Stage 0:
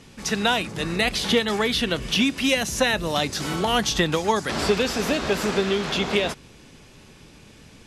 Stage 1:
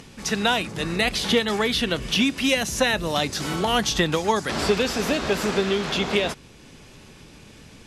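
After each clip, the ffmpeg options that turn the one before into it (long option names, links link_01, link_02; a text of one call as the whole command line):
ffmpeg -i in.wav -af "acompressor=mode=upward:threshold=-41dB:ratio=2.5" out.wav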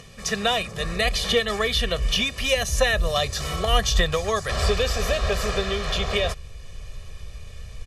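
ffmpeg -i in.wav -af "aecho=1:1:1.7:0.85,asubboost=boost=9.5:cutoff=63,volume=-2.5dB" out.wav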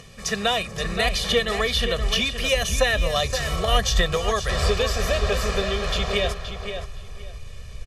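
ffmpeg -i in.wav -filter_complex "[0:a]asplit=2[link_01][link_02];[link_02]adelay=522,lowpass=frequency=4600:poles=1,volume=-8dB,asplit=2[link_03][link_04];[link_04]adelay=522,lowpass=frequency=4600:poles=1,volume=0.22,asplit=2[link_05][link_06];[link_06]adelay=522,lowpass=frequency=4600:poles=1,volume=0.22[link_07];[link_01][link_03][link_05][link_07]amix=inputs=4:normalize=0" out.wav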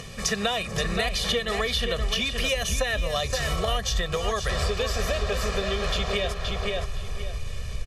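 ffmpeg -i in.wav -af "acompressor=threshold=-29dB:ratio=6,volume=6dB" out.wav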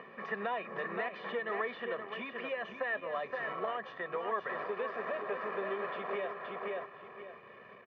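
ffmpeg -i in.wav -af "asoftclip=type=tanh:threshold=-20.5dB,highpass=frequency=230:width=0.5412,highpass=frequency=230:width=1.3066,equalizer=frequency=360:width_type=q:width=4:gain=4,equalizer=frequency=1000:width_type=q:width=4:gain=9,equalizer=frequency=1800:width_type=q:width=4:gain=4,lowpass=frequency=2100:width=0.5412,lowpass=frequency=2100:width=1.3066,volume=-7.5dB" out.wav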